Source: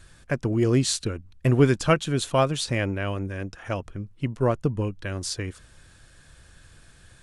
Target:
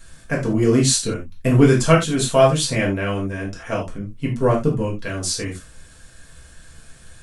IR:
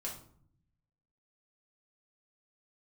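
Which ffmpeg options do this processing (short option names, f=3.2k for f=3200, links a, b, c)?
-filter_complex "[0:a]highshelf=f=7.7k:g=9[a];[1:a]atrim=start_sample=2205,atrim=end_sample=4410[b];[a][b]afir=irnorm=-1:irlink=0,volume=5.5dB"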